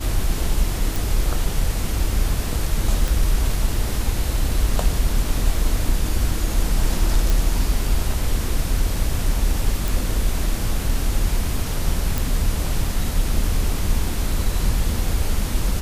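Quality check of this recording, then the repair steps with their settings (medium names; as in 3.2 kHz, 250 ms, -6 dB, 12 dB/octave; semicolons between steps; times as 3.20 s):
0.96 s: pop
3.08 s: pop
7.30 s: pop
9.88 s: pop
12.18 s: pop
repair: de-click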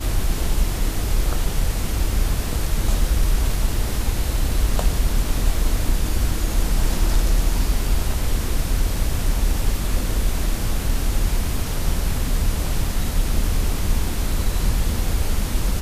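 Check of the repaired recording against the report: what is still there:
nothing left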